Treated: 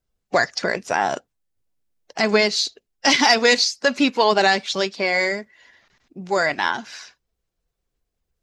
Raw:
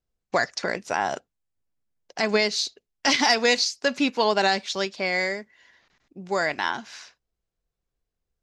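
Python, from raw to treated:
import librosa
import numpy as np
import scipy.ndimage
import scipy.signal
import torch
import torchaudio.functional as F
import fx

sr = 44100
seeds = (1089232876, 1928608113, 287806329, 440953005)

y = fx.spec_quant(x, sr, step_db=15)
y = F.gain(torch.from_numpy(y), 5.0).numpy()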